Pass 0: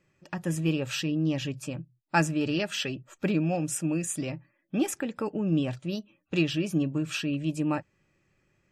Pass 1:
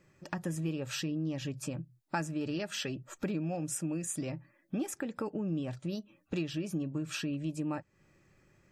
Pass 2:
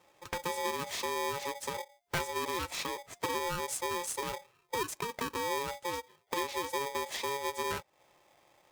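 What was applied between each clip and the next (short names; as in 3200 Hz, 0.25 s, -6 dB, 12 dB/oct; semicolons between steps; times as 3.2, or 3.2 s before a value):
bell 2800 Hz -5 dB 0.67 oct; compressor 3:1, threshold -41 dBFS, peak gain reduction 16.5 dB; gain +5 dB
polarity switched at an audio rate 700 Hz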